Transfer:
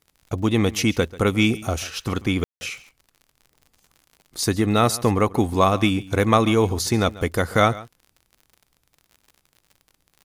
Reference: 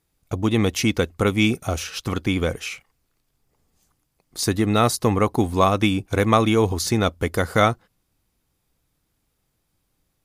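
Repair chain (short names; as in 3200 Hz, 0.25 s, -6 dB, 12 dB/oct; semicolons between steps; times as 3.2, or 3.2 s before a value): de-click; room tone fill 2.44–2.61; inverse comb 0.139 s -19 dB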